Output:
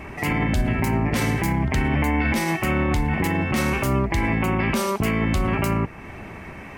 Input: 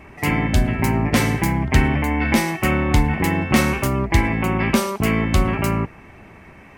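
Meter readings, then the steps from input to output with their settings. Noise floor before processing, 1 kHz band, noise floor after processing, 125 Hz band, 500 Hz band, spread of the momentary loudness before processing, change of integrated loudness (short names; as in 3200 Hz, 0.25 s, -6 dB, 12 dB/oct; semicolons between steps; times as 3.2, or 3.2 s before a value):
-44 dBFS, -2.5 dB, -38 dBFS, -3.0 dB, -2.5 dB, 3 LU, -3.0 dB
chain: in parallel at +0.5 dB: compressor, threshold -32 dBFS, peak gain reduction 20.5 dB; on the sum: limiter -13 dBFS, peak gain reduction 10.5 dB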